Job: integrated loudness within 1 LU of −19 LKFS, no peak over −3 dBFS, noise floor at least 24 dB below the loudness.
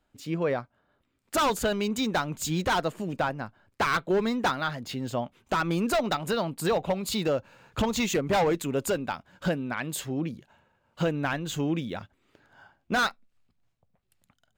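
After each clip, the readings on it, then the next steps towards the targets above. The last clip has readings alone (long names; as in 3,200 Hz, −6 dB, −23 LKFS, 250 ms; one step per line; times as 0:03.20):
integrated loudness −28.5 LKFS; sample peak −17.5 dBFS; target loudness −19.0 LKFS
→ level +9.5 dB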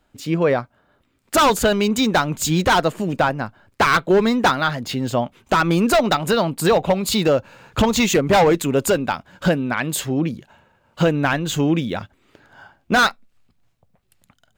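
integrated loudness −19.0 LKFS; sample peak −8.0 dBFS; background noise floor −65 dBFS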